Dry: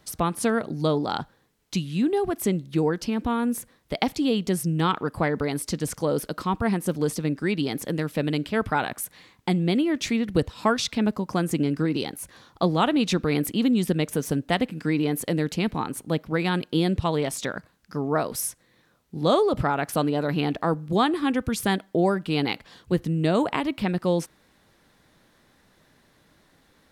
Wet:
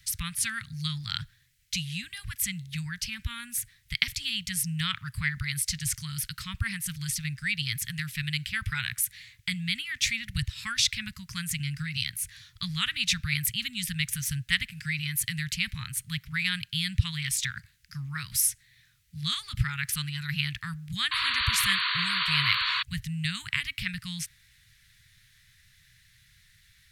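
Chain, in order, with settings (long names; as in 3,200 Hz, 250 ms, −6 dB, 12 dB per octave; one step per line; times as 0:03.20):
elliptic band-stop filter 120–1,900 Hz, stop band 60 dB
sound drawn into the spectrogram noise, 0:21.11–0:22.83, 960–4,600 Hz −33 dBFS
level +5 dB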